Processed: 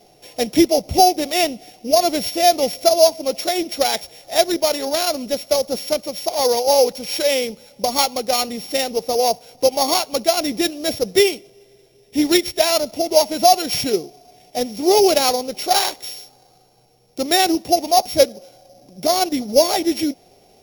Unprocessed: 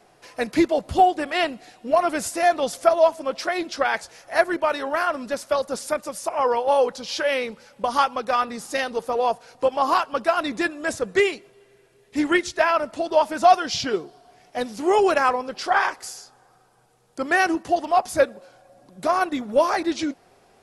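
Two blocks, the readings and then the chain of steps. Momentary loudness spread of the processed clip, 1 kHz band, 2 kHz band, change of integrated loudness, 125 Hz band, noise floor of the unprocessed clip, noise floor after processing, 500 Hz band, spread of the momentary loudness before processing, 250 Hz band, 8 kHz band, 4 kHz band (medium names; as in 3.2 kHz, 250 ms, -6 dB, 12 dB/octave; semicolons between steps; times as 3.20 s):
9 LU, +1.5 dB, -3.5 dB, +4.5 dB, +5.0 dB, -57 dBFS, -53 dBFS, +4.5 dB, 10 LU, +5.0 dB, +12.5 dB, +11.5 dB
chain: sorted samples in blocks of 8 samples; high-order bell 1.3 kHz -12 dB 1.1 oct; loudness maximiser +6 dB; trim -1 dB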